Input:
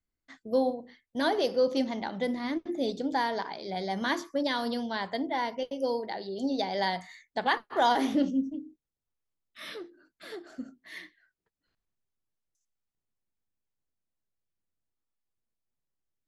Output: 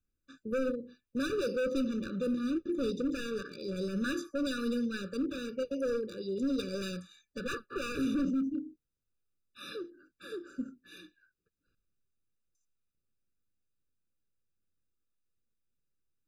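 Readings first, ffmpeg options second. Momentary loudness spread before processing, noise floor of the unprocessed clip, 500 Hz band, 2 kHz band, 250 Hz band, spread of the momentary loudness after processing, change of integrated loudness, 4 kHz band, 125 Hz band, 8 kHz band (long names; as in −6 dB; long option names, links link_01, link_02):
18 LU, below −85 dBFS, −4.0 dB, −6.5 dB, −1.0 dB, 13 LU, −4.5 dB, −8.0 dB, +2.5 dB, +0.5 dB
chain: -af "volume=29.5dB,asoftclip=hard,volume=-29.5dB,lowshelf=frequency=300:gain=4,afftfilt=real='re*eq(mod(floor(b*sr/1024/580),2),0)':imag='im*eq(mod(floor(b*sr/1024/580),2),0)':win_size=1024:overlap=0.75"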